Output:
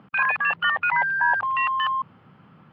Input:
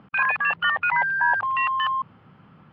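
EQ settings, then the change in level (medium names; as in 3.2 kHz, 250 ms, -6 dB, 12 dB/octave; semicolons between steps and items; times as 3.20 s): high-pass 88 Hz; 0.0 dB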